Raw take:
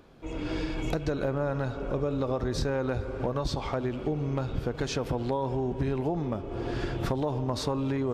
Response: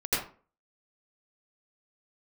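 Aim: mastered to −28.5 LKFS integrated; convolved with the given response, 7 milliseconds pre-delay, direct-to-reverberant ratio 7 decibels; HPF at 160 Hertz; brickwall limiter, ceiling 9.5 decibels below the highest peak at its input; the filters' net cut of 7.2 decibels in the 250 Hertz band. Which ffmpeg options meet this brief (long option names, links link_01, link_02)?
-filter_complex "[0:a]highpass=160,equalizer=frequency=250:width_type=o:gain=-8.5,alimiter=level_in=1dB:limit=-24dB:level=0:latency=1,volume=-1dB,asplit=2[link_01][link_02];[1:a]atrim=start_sample=2205,adelay=7[link_03];[link_02][link_03]afir=irnorm=-1:irlink=0,volume=-17dB[link_04];[link_01][link_04]amix=inputs=2:normalize=0,volume=6.5dB"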